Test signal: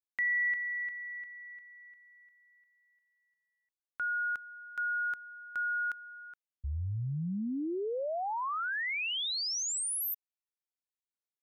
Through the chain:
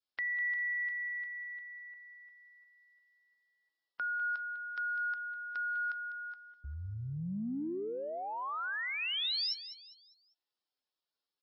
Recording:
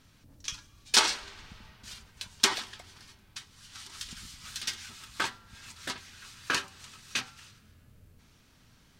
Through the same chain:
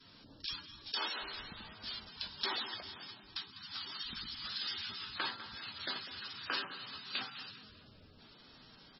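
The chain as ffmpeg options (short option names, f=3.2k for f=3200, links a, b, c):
-filter_complex "[0:a]acrossover=split=200 2300:gain=0.251 1 0.251[a][b][c];[a][b][c]amix=inputs=3:normalize=0,aexciter=amount=4.9:drive=6.4:freq=3.2k,acompressor=threshold=-39dB:ratio=4:attack=3.6:release=22:knee=6:detection=rms,adynamicequalizer=threshold=0.00141:dfrequency=660:dqfactor=0.7:tfrequency=660:tqfactor=0.7:attack=5:release=100:ratio=0.438:range=2.5:mode=cutabove:tftype=bell,asplit=2[d][e];[e]aecho=0:1:200|400|600|800:0.224|0.0851|0.0323|0.0123[f];[d][f]amix=inputs=2:normalize=0,volume=5dB" -ar 22050 -c:a libmp3lame -b:a 16k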